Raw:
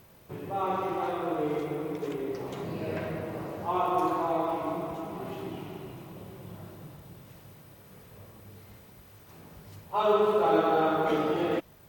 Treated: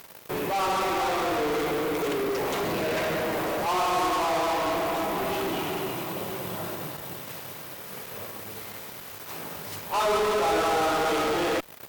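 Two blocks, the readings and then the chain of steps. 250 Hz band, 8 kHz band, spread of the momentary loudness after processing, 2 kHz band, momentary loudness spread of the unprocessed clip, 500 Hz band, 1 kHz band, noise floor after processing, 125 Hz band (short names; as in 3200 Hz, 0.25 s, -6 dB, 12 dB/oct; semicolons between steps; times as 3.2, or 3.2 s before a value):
+1.0 dB, +19.5 dB, 13 LU, +10.5 dB, 22 LU, +2.0 dB, +4.0 dB, -42 dBFS, +0.5 dB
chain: HPF 620 Hz 6 dB/oct; in parallel at -10 dB: fuzz box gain 51 dB, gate -55 dBFS; on the sum: gain -4 dB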